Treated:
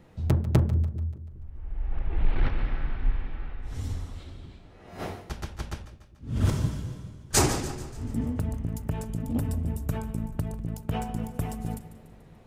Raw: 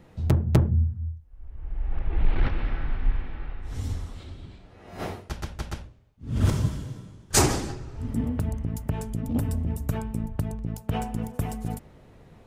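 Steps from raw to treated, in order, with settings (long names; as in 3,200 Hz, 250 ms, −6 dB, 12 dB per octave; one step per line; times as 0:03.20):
echo with a time of its own for lows and highs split 420 Hz, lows 201 ms, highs 145 ms, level −14.5 dB
level −2 dB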